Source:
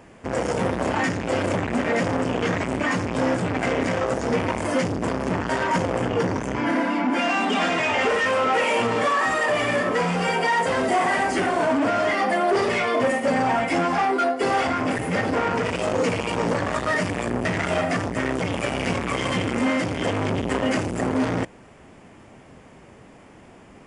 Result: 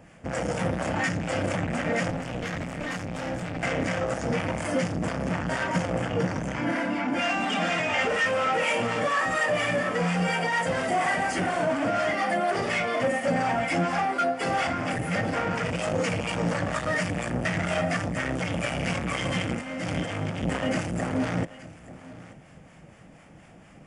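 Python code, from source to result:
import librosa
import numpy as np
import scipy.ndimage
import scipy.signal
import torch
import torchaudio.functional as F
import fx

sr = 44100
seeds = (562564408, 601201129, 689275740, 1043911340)

y = fx.tube_stage(x, sr, drive_db=22.0, bias=0.75, at=(2.1, 3.63))
y = fx.over_compress(y, sr, threshold_db=-27.0, ratio=-1.0, at=(19.46, 20.52))
y = fx.graphic_eq_31(y, sr, hz=(160, 250, 400, 1000, 4000), db=(7, -4, -10, -7, -4))
y = y + 10.0 ** (-18.0 / 20.0) * np.pad(y, (int(882 * sr / 1000.0), 0))[:len(y)]
y = fx.harmonic_tremolo(y, sr, hz=4.2, depth_pct=50, crossover_hz=740.0)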